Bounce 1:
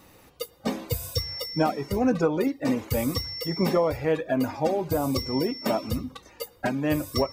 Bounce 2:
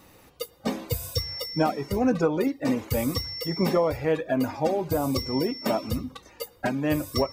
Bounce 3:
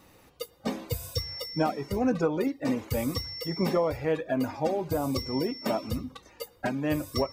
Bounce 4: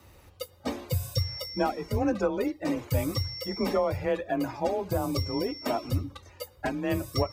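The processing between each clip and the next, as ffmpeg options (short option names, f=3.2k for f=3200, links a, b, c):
-af anull
-af "highshelf=f=11k:g=-3.5,volume=-3dB"
-af "afreqshift=28,lowshelf=f=110:t=q:w=1.5:g=11.5"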